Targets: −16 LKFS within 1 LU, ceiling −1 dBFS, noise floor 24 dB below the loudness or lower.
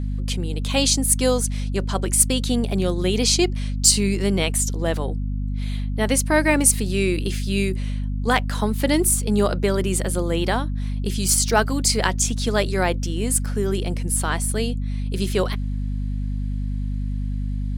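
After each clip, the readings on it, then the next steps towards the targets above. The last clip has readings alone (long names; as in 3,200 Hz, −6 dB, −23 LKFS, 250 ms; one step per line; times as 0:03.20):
mains hum 50 Hz; hum harmonics up to 250 Hz; level of the hum −22 dBFS; integrated loudness −21.5 LKFS; sample peak −2.0 dBFS; target loudness −16.0 LKFS
→ mains-hum notches 50/100/150/200/250 Hz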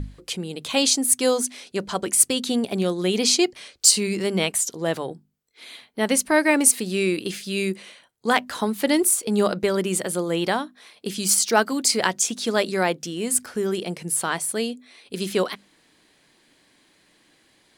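mains hum none found; integrated loudness −22.0 LKFS; sample peak −2.5 dBFS; target loudness −16.0 LKFS
→ level +6 dB
brickwall limiter −1 dBFS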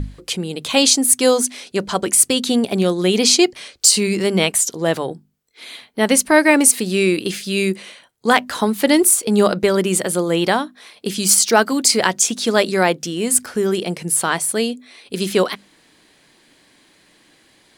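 integrated loudness −16.5 LKFS; sample peak −1.0 dBFS; background noise floor −55 dBFS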